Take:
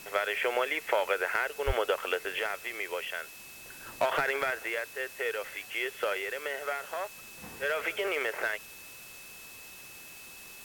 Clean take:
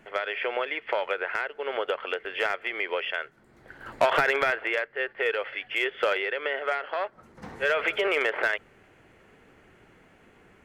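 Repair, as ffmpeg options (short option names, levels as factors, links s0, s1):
-filter_complex "[0:a]bandreject=f=2600:w=30,asplit=3[s0][s1][s2];[s0]afade=t=out:st=1.66:d=0.02[s3];[s1]highpass=f=140:w=0.5412,highpass=f=140:w=1.3066,afade=t=in:st=1.66:d=0.02,afade=t=out:st=1.78:d=0.02[s4];[s2]afade=t=in:st=1.78:d=0.02[s5];[s3][s4][s5]amix=inputs=3:normalize=0,afwtdn=0.0035,asetnsamples=n=441:p=0,asendcmd='2.39 volume volume 6dB',volume=1"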